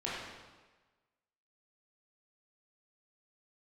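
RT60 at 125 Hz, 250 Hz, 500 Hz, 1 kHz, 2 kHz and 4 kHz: 1.3 s, 1.2 s, 1.3 s, 1.3 s, 1.2 s, 1.1 s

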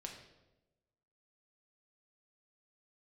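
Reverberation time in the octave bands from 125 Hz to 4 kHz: 1.3 s, 1.2 s, 1.2 s, 0.90 s, 0.75 s, 0.75 s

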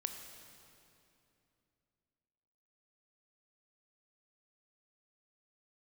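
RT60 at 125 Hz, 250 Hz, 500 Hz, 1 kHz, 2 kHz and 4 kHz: 3.3 s, 3.3 s, 2.9 s, 2.6 s, 2.5 s, 2.3 s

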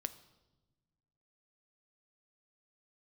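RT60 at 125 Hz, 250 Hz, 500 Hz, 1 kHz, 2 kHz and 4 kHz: 2.0 s, 1.8 s, 1.3 s, 1.0 s, 0.80 s, 0.90 s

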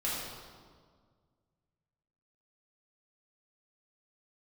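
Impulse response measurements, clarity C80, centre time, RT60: 1.0 dB, 101 ms, 1.8 s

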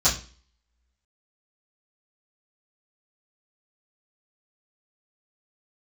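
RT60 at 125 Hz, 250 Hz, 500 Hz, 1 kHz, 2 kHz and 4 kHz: 0.40 s, 0.45 s, 0.40 s, 0.35 s, 0.40 s, 0.40 s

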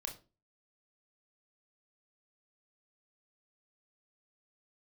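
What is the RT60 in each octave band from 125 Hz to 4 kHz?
0.45 s, 0.40 s, 0.35 s, 0.30 s, 0.25 s, 0.25 s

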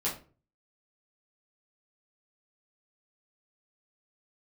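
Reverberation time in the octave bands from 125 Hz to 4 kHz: 0.60 s, 0.45 s, 0.40 s, 0.35 s, 0.30 s, 0.25 s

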